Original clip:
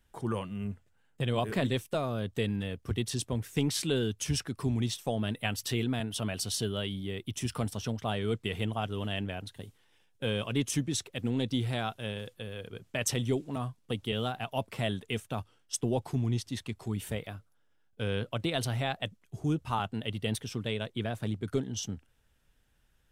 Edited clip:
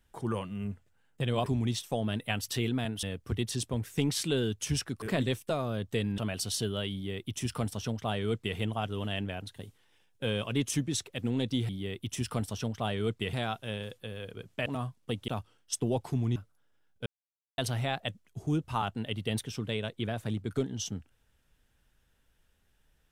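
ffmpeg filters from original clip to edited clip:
-filter_complex "[0:a]asplit=12[a][b][c][d][e][f][g][h][i][j][k][l];[a]atrim=end=1.462[m];[b]atrim=start=4.608:end=6.182[n];[c]atrim=start=2.618:end=4.612[o];[d]atrim=start=1.458:end=2.622[p];[e]atrim=start=6.178:end=11.692[q];[f]atrim=start=6.928:end=8.572[r];[g]atrim=start=11.688:end=13.022[s];[h]atrim=start=13.468:end=14.092[t];[i]atrim=start=15.288:end=16.372[u];[j]atrim=start=17.328:end=18.03,asetpts=PTS-STARTPTS,afade=t=out:st=0.698:d=0.004:c=hsin[v];[k]atrim=start=18.03:end=18.55,asetpts=PTS-STARTPTS,volume=0[w];[l]atrim=start=18.55,asetpts=PTS-STARTPTS,afade=t=in:d=0.004:c=hsin[x];[m][n]acrossfade=d=0.004:c1=hsin:c2=hsin[y];[y][o]acrossfade=d=0.004:c1=hsin:c2=hsin[z];[z][p]acrossfade=d=0.004:c1=hsin:c2=hsin[aa];[aa][q]acrossfade=d=0.004:c1=hsin:c2=hsin[ab];[ab][r]acrossfade=d=0.004:c1=hsin:c2=hsin[ac];[ac][s]acrossfade=d=0.004:c1=hsin:c2=hsin[ad];[ad][t]acrossfade=d=0.004:c1=hsin:c2=hsin[ae];[ae][u]acrossfade=d=0.004:c1=hsin:c2=hsin[af];[v][w][x]concat=n=3:v=0:a=1[ag];[af][ag]acrossfade=d=0.004:c1=hsin:c2=hsin"

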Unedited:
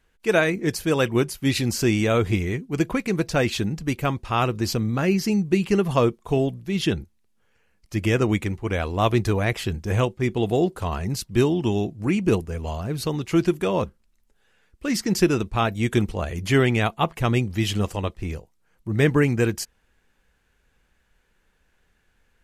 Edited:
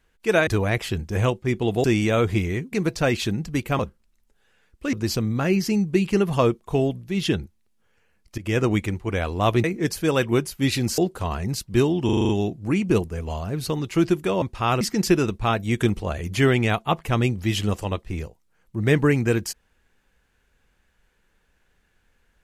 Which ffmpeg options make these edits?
-filter_complex "[0:a]asplit=17[a][b][c][d][e][f][g][h][i][j][k][l][m][n][o][p][q];[a]atrim=end=0.472[r];[b]atrim=start=9.218:end=10.592[s];[c]atrim=start=1.808:end=2.702[t];[d]atrim=start=3.058:end=4.122[u];[e]atrim=start=13.788:end=14.932[v];[f]atrim=start=4.508:end=7.96,asetpts=PTS-STARTPTS,afade=t=out:st=3.448:d=0.004:c=hsin:silence=0.112202[w];[g]atrim=start=7.96:end=9.222,asetpts=PTS-STARTPTS,afade=t=in:d=0.28:c=qsin:silence=0.112202[x];[h]atrim=start=0.468:end=1.812[y];[i]atrim=start=10.588:end=11.702[z];[j]atrim=start=11.658:end=11.702[aa];[k]atrim=start=11.658:end=11.702[ab];[l]atrim=start=11.658:end=11.702[ac];[m]atrim=start=11.658:end=11.702[ad];[n]atrim=start=11.658:end=11.702[ae];[o]atrim=start=11.658:end=13.792[af];[p]atrim=start=4.118:end=4.512[ag];[q]atrim=start=14.928[ah];[r][s]acrossfade=d=0.004:c1=hsin:c2=hsin[ai];[ai][t]acrossfade=d=0.004:c1=hsin:c2=hsin[aj];[aj][u]acrossfade=d=0.004:c1=hsin:c2=hsin[ak];[ak][v]acrossfade=d=0.004:c1=hsin:c2=hsin[al];[w][x]concat=n=2:v=0:a=1[am];[al][am]acrossfade=d=0.004:c1=hsin:c2=hsin[an];[an][y]acrossfade=d=0.004:c1=hsin:c2=hsin[ao];[ao][z]acrossfade=d=0.004:c1=hsin:c2=hsin[ap];[ap][aa]acrossfade=d=0.004:c1=hsin:c2=hsin[aq];[aq][ab]acrossfade=d=0.004:c1=hsin:c2=hsin[ar];[ar][ac]acrossfade=d=0.004:c1=hsin:c2=hsin[as];[as][ad]acrossfade=d=0.004:c1=hsin:c2=hsin[at];[at][ae]acrossfade=d=0.004:c1=hsin:c2=hsin[au];[au][af]acrossfade=d=0.004:c1=hsin:c2=hsin[av];[av][ag]acrossfade=d=0.004:c1=hsin:c2=hsin[aw];[aw][ah]acrossfade=d=0.004:c1=hsin:c2=hsin"

